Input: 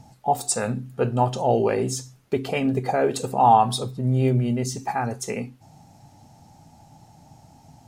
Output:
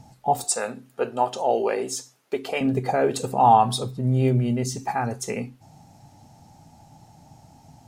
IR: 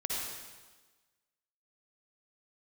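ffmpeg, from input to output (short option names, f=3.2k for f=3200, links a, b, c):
-filter_complex "[0:a]asettb=1/sr,asplit=3[a][b][c];[a]atrim=end=0.444[d];[b]atrim=start=0.44:end=2.61,asetpts=PTS-STARTPTS,afade=t=in:d=0.004:c=qsin,afade=t=out:st=2.166:d=0.004:c=qsin,highpass=380[e];[c]atrim=start=2.606[f];[d][e]acrossfade=d=0.004:c1=hsin:c2=qsin[g];[g][f]acrossfade=d=0.004:c1=qsin:c2=hsin"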